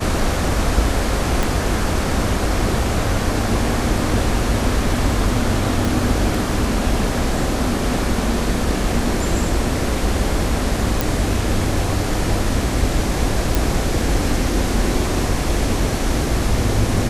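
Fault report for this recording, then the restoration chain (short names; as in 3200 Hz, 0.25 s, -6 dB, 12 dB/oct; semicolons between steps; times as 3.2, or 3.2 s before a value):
1.43 pop
5.85 pop
11.01 pop
13.55 pop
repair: de-click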